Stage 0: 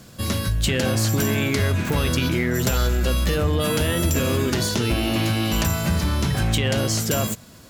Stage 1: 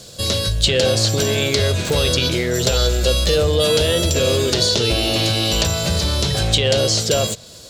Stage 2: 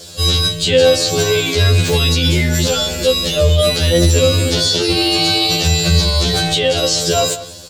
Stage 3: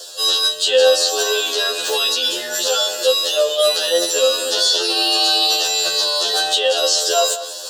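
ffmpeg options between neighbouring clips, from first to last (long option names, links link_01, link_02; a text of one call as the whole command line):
ffmpeg -i in.wav -filter_complex "[0:a]equalizer=frequency=250:width_type=o:width=1:gain=-8,equalizer=frequency=500:width_type=o:width=1:gain=10,equalizer=frequency=1000:width_type=o:width=1:gain=-4,equalizer=frequency=2000:width_type=o:width=1:gain=-4,equalizer=frequency=4000:width_type=o:width=1:gain=11,equalizer=frequency=8000:width_type=o:width=1:gain=9,equalizer=frequency=16000:width_type=o:width=1:gain=-3,acrossover=split=5300[link_01][link_02];[link_02]acompressor=threshold=-31dB:ratio=6[link_03];[link_01][link_03]amix=inputs=2:normalize=0,volume=2dB" out.wav
ffmpeg -i in.wav -filter_complex "[0:a]asplit=2[link_01][link_02];[link_02]adelay=192.4,volume=-16dB,highshelf=frequency=4000:gain=-4.33[link_03];[link_01][link_03]amix=inputs=2:normalize=0,alimiter=level_in=9dB:limit=-1dB:release=50:level=0:latency=1,afftfilt=real='re*2*eq(mod(b,4),0)':imag='im*2*eq(mod(b,4),0)':win_size=2048:overlap=0.75,volume=-2dB" out.wav
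ffmpeg -i in.wav -af "highpass=frequency=480:width=0.5412,highpass=frequency=480:width=1.3066,areverse,acompressor=mode=upward:threshold=-23dB:ratio=2.5,areverse,asuperstop=centerf=2200:order=4:qfactor=3" out.wav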